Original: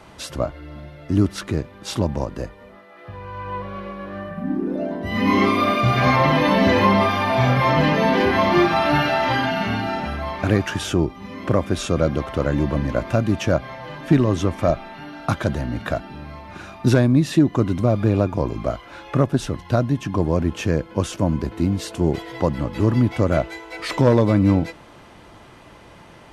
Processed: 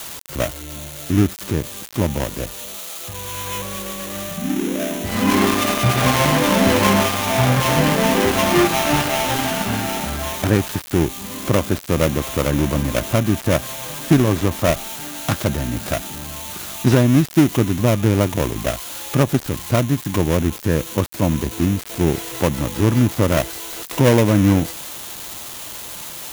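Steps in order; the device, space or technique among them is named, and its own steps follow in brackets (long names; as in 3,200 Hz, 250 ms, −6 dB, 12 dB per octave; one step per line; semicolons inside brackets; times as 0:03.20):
budget class-D amplifier (gap after every zero crossing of 0.3 ms; spike at every zero crossing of −16 dBFS)
level +2 dB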